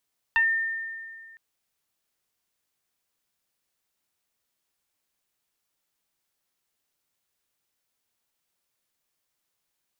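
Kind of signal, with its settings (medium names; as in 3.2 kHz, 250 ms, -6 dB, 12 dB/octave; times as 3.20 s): FM tone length 1.01 s, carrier 1.81 kHz, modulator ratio 0.49, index 0.98, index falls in 0.16 s exponential, decay 2.01 s, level -17 dB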